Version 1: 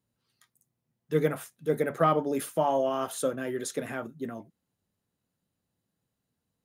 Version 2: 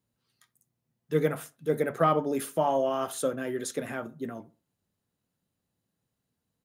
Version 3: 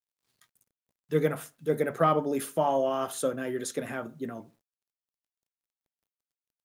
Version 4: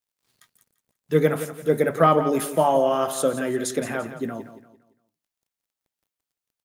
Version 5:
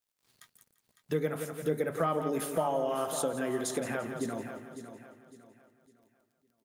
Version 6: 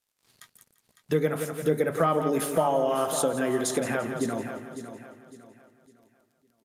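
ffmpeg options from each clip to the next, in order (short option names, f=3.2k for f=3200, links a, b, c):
-filter_complex "[0:a]asplit=2[a][b];[b]adelay=66,lowpass=f=1.5k:p=1,volume=-18dB,asplit=2[c][d];[d]adelay=66,lowpass=f=1.5k:p=1,volume=0.33,asplit=2[e][f];[f]adelay=66,lowpass=f=1.5k:p=1,volume=0.33[g];[a][c][e][g]amix=inputs=4:normalize=0"
-af "acrusher=bits=11:mix=0:aa=0.000001"
-af "aecho=1:1:171|342|513|684:0.251|0.0879|0.0308|0.0108,volume=6.5dB"
-af "acompressor=threshold=-33dB:ratio=2.5,aecho=1:1:555|1110|1665|2220:0.282|0.093|0.0307|0.0101"
-af "aresample=32000,aresample=44100,volume=6dB"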